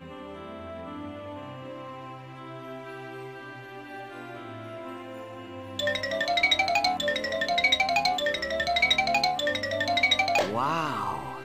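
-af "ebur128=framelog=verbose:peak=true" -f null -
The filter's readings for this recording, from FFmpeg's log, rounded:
Integrated loudness:
  I:         -24.7 LUFS
  Threshold: -37.4 LUFS
Loudness range:
  LRA:        16.7 LU
  Threshold: -47.2 LUFS
  LRA low:   -40.4 LUFS
  LRA high:  -23.7 LUFS
True peak:
  Peak:      -10.9 dBFS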